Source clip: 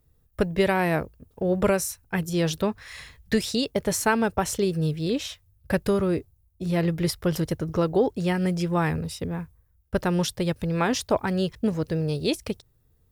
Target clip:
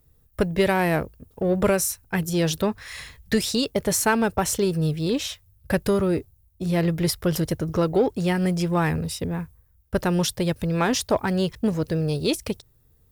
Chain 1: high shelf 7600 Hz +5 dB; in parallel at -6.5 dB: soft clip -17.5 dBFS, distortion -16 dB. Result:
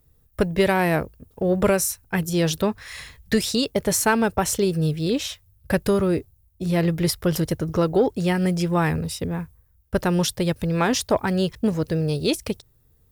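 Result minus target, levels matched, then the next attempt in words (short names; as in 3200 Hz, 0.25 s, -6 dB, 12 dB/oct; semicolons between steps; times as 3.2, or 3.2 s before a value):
soft clip: distortion -9 dB
high shelf 7600 Hz +5 dB; in parallel at -6.5 dB: soft clip -27 dBFS, distortion -8 dB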